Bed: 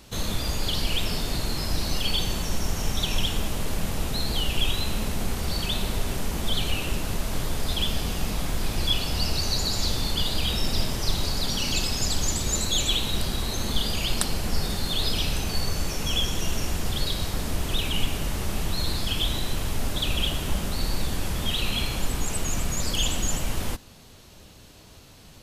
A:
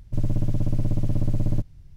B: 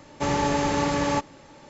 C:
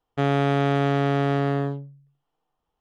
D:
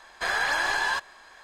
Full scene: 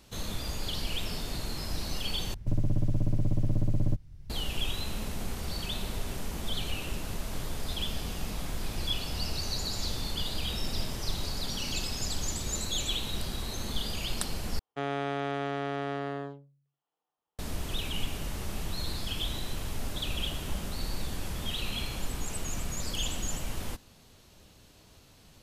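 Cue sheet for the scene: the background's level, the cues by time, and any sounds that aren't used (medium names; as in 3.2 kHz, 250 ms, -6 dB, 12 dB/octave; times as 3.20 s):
bed -7.5 dB
2.34 s: replace with A -4 dB + three bands compressed up and down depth 40%
14.59 s: replace with C -7.5 dB + high-pass 390 Hz 6 dB/octave
not used: B, D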